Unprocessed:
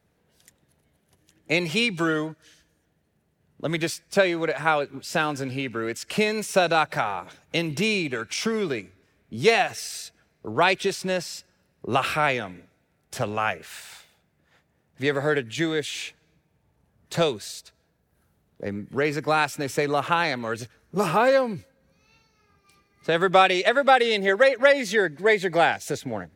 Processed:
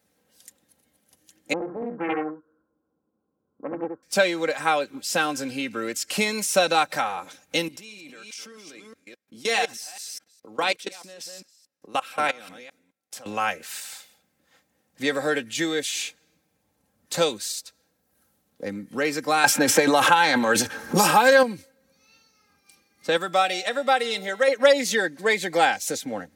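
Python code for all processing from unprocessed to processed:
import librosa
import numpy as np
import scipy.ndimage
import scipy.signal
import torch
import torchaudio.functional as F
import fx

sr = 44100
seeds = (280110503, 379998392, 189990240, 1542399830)

y = fx.chain(x, sr, fx.cheby_ripple(hz=1500.0, ripple_db=9),
    fx.echo_single(ms=71, db=-4.5),
    fx.doppler_dist(depth_ms=0.63), at=(1.53, 4.03))
y = fx.chain(y, sr, fx.reverse_delay(ms=209, wet_db=-8.5),
    fx.low_shelf(hz=160.0, db=-9.0),
    fx.level_steps(step_db=22), at=(7.68, 13.26))
y = fx.chain(y, sr, fx.transient(attack_db=2, sustain_db=10),
    fx.small_body(hz=(870.0, 1600.0, 3300.0), ring_ms=45, db=10),
    fx.band_squash(depth_pct=100), at=(19.44, 21.43))
y = fx.chain(y, sr, fx.high_shelf(hz=11000.0, db=6.0),
    fx.comb_fb(f0_hz=150.0, decay_s=1.2, harmonics='all', damping=0.0, mix_pct=50), at=(23.17, 24.48))
y = scipy.signal.sosfilt(scipy.signal.butter(2, 100.0, 'highpass', fs=sr, output='sos'), y)
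y = fx.bass_treble(y, sr, bass_db=-2, treble_db=9)
y = y + 0.56 * np.pad(y, (int(3.8 * sr / 1000.0), 0))[:len(y)]
y = y * librosa.db_to_amplitude(-1.5)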